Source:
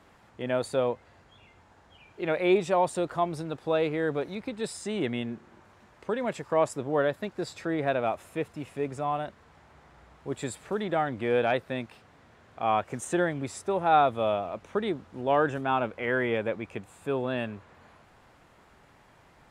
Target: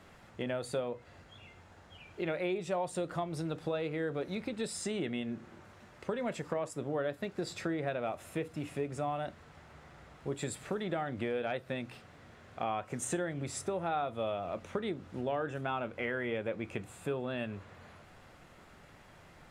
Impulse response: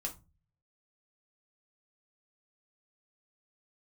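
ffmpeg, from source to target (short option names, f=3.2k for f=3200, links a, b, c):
-filter_complex "[0:a]equalizer=f=890:w=1.5:g=-4,acompressor=threshold=-34dB:ratio=6,asplit=2[a][b];[1:a]atrim=start_sample=2205[c];[b][c]afir=irnorm=-1:irlink=0,volume=-7dB[d];[a][d]amix=inputs=2:normalize=0"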